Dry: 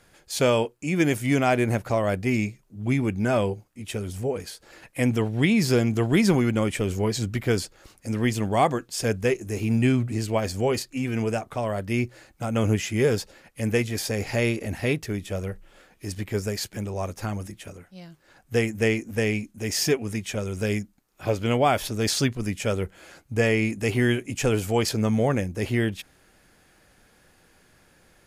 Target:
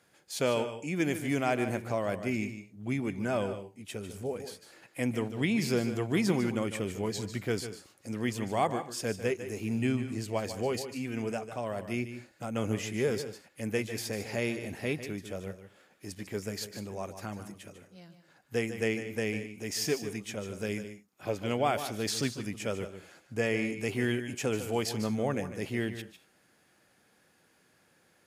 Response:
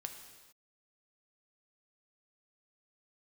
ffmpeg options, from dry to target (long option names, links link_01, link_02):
-filter_complex "[0:a]highpass=130,asplit=2[link_01][link_02];[1:a]atrim=start_sample=2205,atrim=end_sample=4410,adelay=149[link_03];[link_02][link_03]afir=irnorm=-1:irlink=0,volume=-7dB[link_04];[link_01][link_04]amix=inputs=2:normalize=0,volume=-7.5dB"